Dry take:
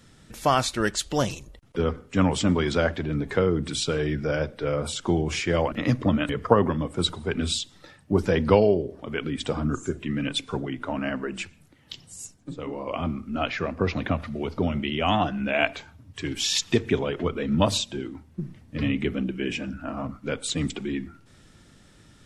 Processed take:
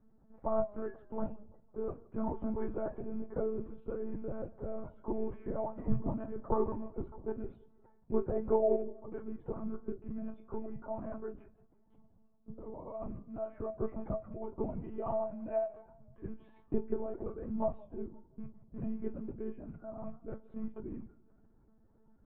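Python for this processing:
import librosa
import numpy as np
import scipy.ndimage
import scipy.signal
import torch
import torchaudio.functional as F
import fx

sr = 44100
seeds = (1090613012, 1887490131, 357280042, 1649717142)

y = fx.rattle_buzz(x, sr, strikes_db=-31.0, level_db=-27.0)
y = scipy.signal.sosfilt(scipy.signal.butter(4, 1000.0, 'lowpass', fs=sr, output='sos'), y)
y = fx.comb_fb(y, sr, f0_hz=130.0, decay_s=0.17, harmonics='odd', damping=0.0, mix_pct=90)
y = fx.lpc_monotone(y, sr, seeds[0], pitch_hz=220.0, order=16)
y = fx.echo_warbled(y, sr, ms=169, feedback_pct=42, rate_hz=2.8, cents=109, wet_db=-23)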